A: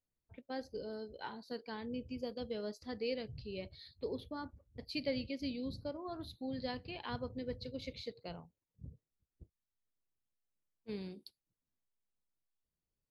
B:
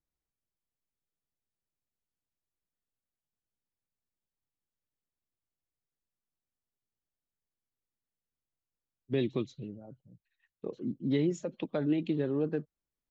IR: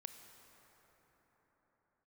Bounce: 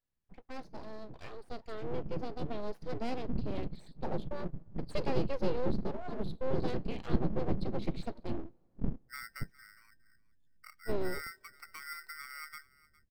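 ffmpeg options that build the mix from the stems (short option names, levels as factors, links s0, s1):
-filter_complex "[0:a]asubboost=boost=11:cutoff=220,aeval=exprs='abs(val(0))':c=same,highshelf=f=4700:g=-11,volume=1.12,asplit=2[s0][s1];[s1]volume=0.0841[s2];[1:a]lowpass=2000,aeval=exprs='val(0)*sgn(sin(2*PI*1700*n/s))':c=same,volume=0.158,asplit=2[s3][s4];[s4]volume=0.0944[s5];[2:a]atrim=start_sample=2205[s6];[s2][s6]afir=irnorm=-1:irlink=0[s7];[s5]aecho=0:1:409:1[s8];[s0][s3][s7][s8]amix=inputs=4:normalize=0"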